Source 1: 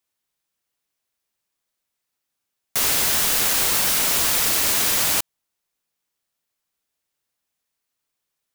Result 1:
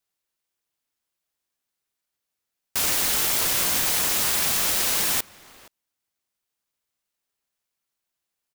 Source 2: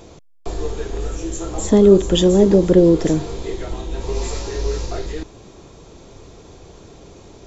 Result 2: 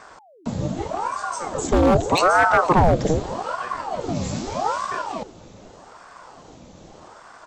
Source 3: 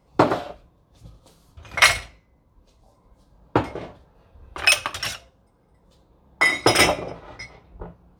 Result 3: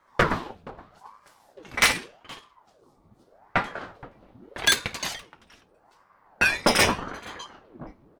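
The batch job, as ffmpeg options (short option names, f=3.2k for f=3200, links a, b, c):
-filter_complex "[0:a]aeval=exprs='0.447*(abs(mod(val(0)/0.447+3,4)-2)-1)':c=same,asplit=2[a][b];[b]adelay=472.3,volume=-20dB,highshelf=f=4k:g=-10.6[c];[a][c]amix=inputs=2:normalize=0,aeval=exprs='val(0)*sin(2*PI*620*n/s+620*0.8/0.82*sin(2*PI*0.82*n/s))':c=same"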